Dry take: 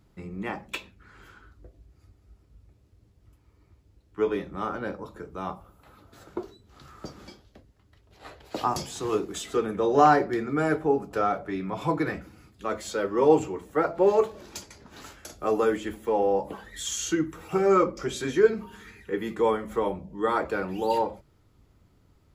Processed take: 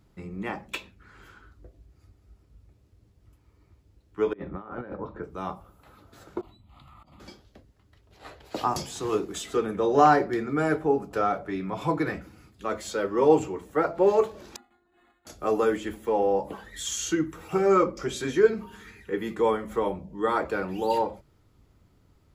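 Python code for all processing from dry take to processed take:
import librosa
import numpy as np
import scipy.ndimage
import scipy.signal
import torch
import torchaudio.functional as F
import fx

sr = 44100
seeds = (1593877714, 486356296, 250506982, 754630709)

y = fx.chain(x, sr, fx.lowpass(hz=1900.0, slope=12),
    fx.over_compress(threshold_db=-36.0, ratio=-0.5), at=(4.33, 5.24))
y = fx.chain(y, sr, fx.fixed_phaser(hz=1600.0, stages=6),
    fx.over_compress(threshold_db=-53.0, ratio=-1.0),
    fx.high_shelf(hz=5100.0, db=-8.5), at=(6.41, 7.2))
y = fx.chain(y, sr, fx.stiff_resonator(f0_hz=350.0, decay_s=0.31, stiffness=0.002),
    fx.resample_linear(factor=8), at=(14.56, 15.27))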